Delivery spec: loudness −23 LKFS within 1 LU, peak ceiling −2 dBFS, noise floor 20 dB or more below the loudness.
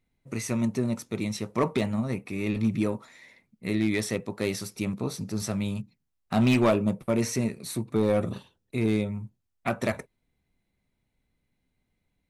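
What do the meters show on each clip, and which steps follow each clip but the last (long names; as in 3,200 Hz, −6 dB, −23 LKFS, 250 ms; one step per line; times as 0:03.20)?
share of clipped samples 0.4%; peaks flattened at −16.0 dBFS; integrated loudness −28.5 LKFS; sample peak −16.0 dBFS; target loudness −23.0 LKFS
→ clipped peaks rebuilt −16 dBFS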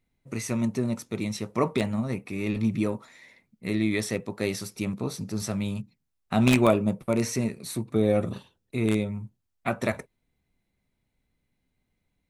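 share of clipped samples 0.0%; integrated loudness −27.5 LKFS; sample peak −7.0 dBFS; target loudness −23.0 LKFS
→ level +4.5 dB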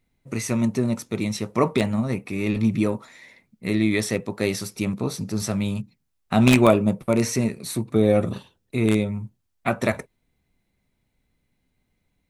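integrated loudness −23.0 LKFS; sample peak −2.5 dBFS; background noise floor −73 dBFS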